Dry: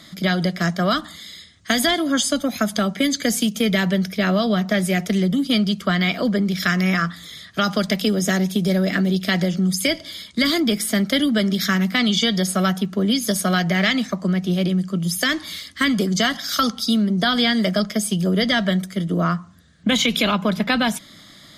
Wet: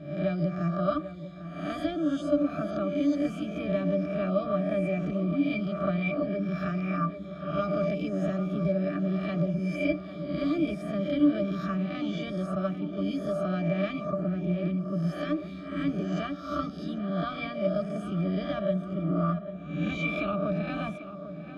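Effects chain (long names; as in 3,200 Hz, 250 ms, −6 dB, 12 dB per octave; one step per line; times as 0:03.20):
peak hold with a rise ahead of every peak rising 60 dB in 0.71 s
0:12.55–0:13.09: downward expander −16 dBFS
resonances in every octave D, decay 0.11 s
tape delay 795 ms, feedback 72%, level −10.5 dB, low-pass 2,100 Hz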